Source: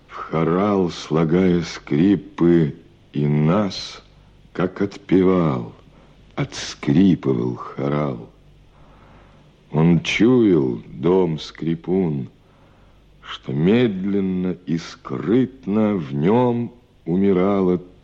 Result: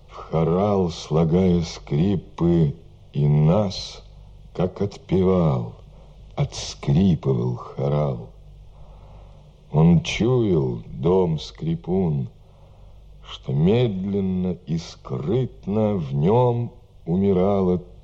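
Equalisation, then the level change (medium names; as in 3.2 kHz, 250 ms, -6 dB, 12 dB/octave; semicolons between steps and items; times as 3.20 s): bass shelf 310 Hz +8 dB; static phaser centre 660 Hz, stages 4; 0.0 dB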